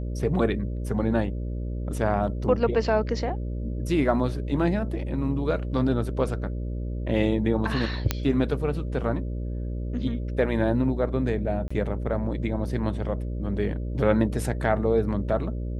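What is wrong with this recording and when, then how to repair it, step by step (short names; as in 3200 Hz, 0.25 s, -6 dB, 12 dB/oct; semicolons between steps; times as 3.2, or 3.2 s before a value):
buzz 60 Hz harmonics 10 -30 dBFS
8.11 pop -7 dBFS
11.68–11.71 gap 25 ms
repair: de-click; de-hum 60 Hz, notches 10; interpolate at 11.68, 25 ms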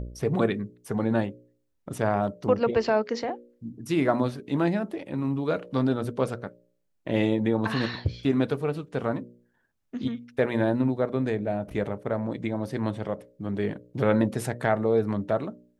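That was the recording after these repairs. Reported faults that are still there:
none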